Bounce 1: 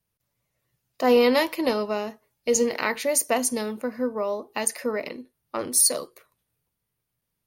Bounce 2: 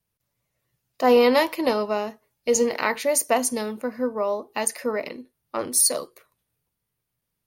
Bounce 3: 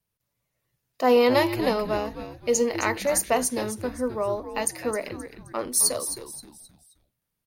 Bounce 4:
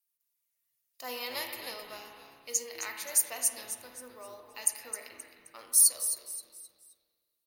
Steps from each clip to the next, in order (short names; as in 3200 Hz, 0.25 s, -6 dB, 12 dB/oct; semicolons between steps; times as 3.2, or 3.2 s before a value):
dynamic EQ 870 Hz, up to +4 dB, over -31 dBFS, Q 0.95
frequency-shifting echo 0.263 s, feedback 36%, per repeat -140 Hz, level -10.5 dB; short-mantissa float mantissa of 6-bit; gain -2 dB
pre-emphasis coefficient 0.97; spring tank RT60 1.8 s, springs 36/57 ms, chirp 75 ms, DRR 3.5 dB; gain -1.5 dB